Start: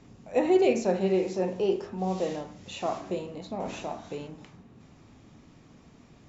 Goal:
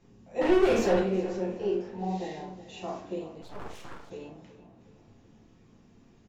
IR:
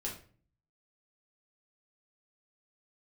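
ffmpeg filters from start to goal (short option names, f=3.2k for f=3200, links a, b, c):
-filter_complex "[0:a]asettb=1/sr,asplit=3[a][b][c];[a]atrim=end=0.414[d];[b]atrim=start=0.41:end=1,asetpts=PTS-STARTPTS,afade=t=in:d=0.004:c=qsin,afade=t=out:st=0.586:d=0.004:c=qsin,asplit=2[e][f];[f]highpass=f=720:p=1,volume=30dB,asoftclip=type=tanh:threshold=-11.5dB[g];[e][g]amix=inputs=2:normalize=0,lowpass=f=2k:p=1,volume=-6dB[h];[c]atrim=start=0.996[i];[d][h]acrossfade=d=0.004:c1=hsin:c2=qsin[j];[j][i]acrossfade=d=0.004:c1=qsin:c2=hsin,asettb=1/sr,asplit=3[k][l][m];[k]atrim=end=1.864[n];[l]atrim=start=1.86:end=2.49,asetpts=PTS-STARTPTS,afade=t=in:d=0.004:c=qsin,afade=t=out:st=0.626:d=0.004:c=qsin,equalizer=f=500:t=o:w=0.33:g=-9,equalizer=f=800:t=o:w=0.33:g=10,equalizer=f=1.25k:t=o:w=0.33:g=-6,equalizer=f=2k:t=o:w=0.33:g=10,equalizer=f=4k:t=o:w=0.33:g=7[o];[m]atrim=start=2.486[p];[n][o]acrossfade=d=0.004:c1=hsin:c2=qsin[q];[q][p]acrossfade=d=0.004:c1=qsin:c2=hsin,asplit=2[r][s];[s]adelay=370,lowpass=f=4.3k:p=1,volume=-14.5dB,asplit=2[t][u];[u]adelay=370,lowpass=f=4.3k:p=1,volume=0.49,asplit=2[v][w];[w]adelay=370,lowpass=f=4.3k:p=1,volume=0.49,asplit=2[x][y];[y]adelay=370,lowpass=f=4.3k:p=1,volume=0.49,asplit=2[z][aa];[aa]adelay=370,lowpass=f=4.3k:p=1,volume=0.49[ab];[r][t][v][x][z][ab]amix=inputs=6:normalize=0[ac];[1:a]atrim=start_sample=2205,atrim=end_sample=4410[ad];[ac][ad]afir=irnorm=-1:irlink=0,asplit=3[ae][af][ag];[ae]afade=t=out:st=3.41:d=0.02[ah];[af]aeval=exprs='abs(val(0))':c=same,afade=t=in:st=3.41:d=0.02,afade=t=out:st=4.09:d=0.02[ai];[ag]afade=t=in:st=4.09:d=0.02[aj];[ah][ai][aj]amix=inputs=3:normalize=0,volume=-7dB"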